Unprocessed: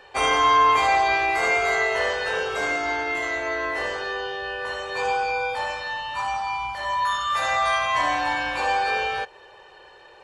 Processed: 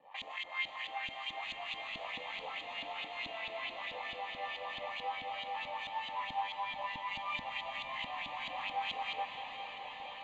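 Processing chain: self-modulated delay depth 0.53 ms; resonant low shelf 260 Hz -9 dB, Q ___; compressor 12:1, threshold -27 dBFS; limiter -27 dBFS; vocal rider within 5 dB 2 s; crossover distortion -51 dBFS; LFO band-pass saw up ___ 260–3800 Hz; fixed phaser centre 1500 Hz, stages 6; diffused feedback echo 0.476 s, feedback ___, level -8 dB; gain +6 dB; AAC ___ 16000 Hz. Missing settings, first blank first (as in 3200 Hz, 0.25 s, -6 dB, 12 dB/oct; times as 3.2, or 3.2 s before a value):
1.5, 4.6 Hz, 77%, 64 kbps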